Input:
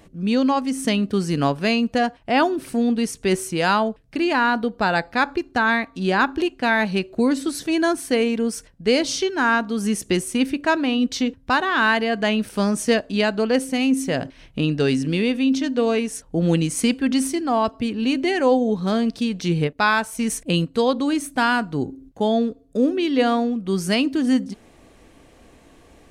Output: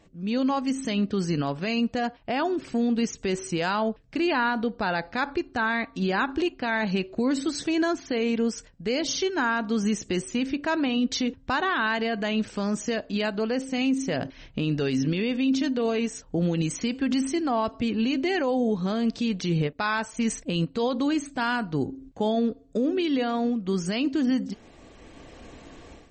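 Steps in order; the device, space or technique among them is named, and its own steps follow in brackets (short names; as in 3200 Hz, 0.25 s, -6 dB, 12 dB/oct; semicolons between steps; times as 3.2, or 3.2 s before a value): low-bitrate web radio (AGC gain up to 12.5 dB; limiter -9 dBFS, peak gain reduction 8 dB; gain -7.5 dB; MP3 32 kbps 44100 Hz)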